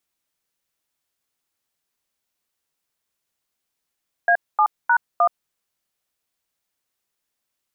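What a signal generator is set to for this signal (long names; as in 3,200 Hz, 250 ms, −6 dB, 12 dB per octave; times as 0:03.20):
touch tones "A7#1", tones 74 ms, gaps 233 ms, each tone −15.5 dBFS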